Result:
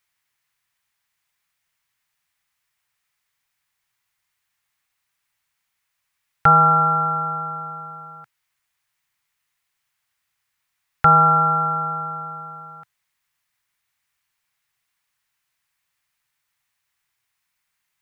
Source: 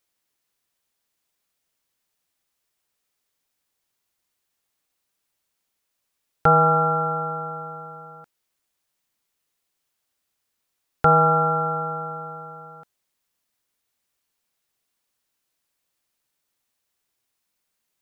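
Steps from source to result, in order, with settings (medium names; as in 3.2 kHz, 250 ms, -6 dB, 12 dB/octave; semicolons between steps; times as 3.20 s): ten-band graphic EQ 125 Hz +6 dB, 250 Hz -8 dB, 500 Hz -8 dB, 1 kHz +4 dB, 2 kHz +8 dB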